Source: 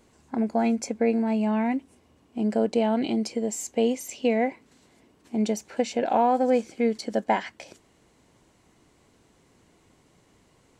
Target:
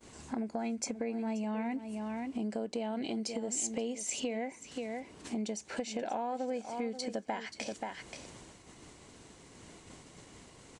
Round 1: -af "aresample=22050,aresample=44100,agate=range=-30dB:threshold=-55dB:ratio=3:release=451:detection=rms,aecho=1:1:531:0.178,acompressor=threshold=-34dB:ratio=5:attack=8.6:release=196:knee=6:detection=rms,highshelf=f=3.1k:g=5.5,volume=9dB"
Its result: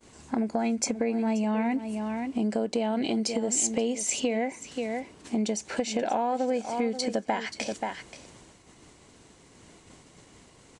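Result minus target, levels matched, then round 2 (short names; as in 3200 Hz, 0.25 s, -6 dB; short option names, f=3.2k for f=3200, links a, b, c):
compressor: peak gain reduction -8.5 dB
-af "aresample=22050,aresample=44100,agate=range=-30dB:threshold=-55dB:ratio=3:release=451:detection=rms,aecho=1:1:531:0.178,acompressor=threshold=-44.5dB:ratio=5:attack=8.6:release=196:knee=6:detection=rms,highshelf=f=3.1k:g=5.5,volume=9dB"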